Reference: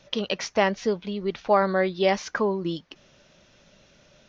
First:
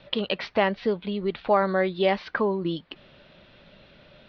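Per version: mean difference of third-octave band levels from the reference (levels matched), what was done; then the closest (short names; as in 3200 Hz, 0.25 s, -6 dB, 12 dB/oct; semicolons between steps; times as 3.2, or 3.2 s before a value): 2.0 dB: steep low-pass 4300 Hz 48 dB/oct; in parallel at +2 dB: compressor, threshold -34 dBFS, peak gain reduction 18 dB; on the sum: gain -2.5 dB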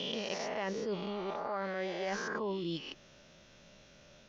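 8.0 dB: spectral swells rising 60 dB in 1.31 s; reverse; compressor 12:1, threshold -28 dBFS, peak gain reduction 16 dB; reverse; gain -5 dB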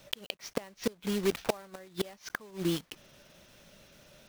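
13.0 dB: block floating point 3-bit; flipped gate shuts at -18 dBFS, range -27 dB; gain -1 dB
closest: first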